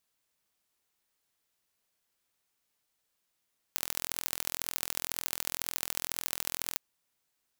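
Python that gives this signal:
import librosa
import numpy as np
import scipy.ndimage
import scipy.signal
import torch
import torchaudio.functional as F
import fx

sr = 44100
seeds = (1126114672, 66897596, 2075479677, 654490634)

y = fx.impulse_train(sr, length_s=3.02, per_s=42.0, accent_every=3, level_db=-3.0)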